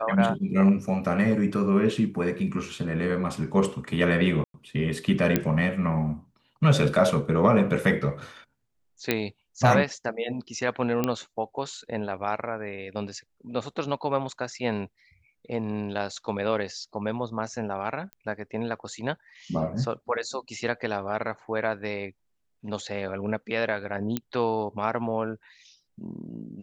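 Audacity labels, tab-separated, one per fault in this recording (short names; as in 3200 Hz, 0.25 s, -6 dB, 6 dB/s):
4.440000	4.540000	gap 0.102 s
5.360000	5.360000	pop -7 dBFS
9.110000	9.110000	pop -8 dBFS
11.040000	11.040000	pop -11 dBFS
18.130000	18.130000	pop -25 dBFS
24.170000	24.170000	pop -13 dBFS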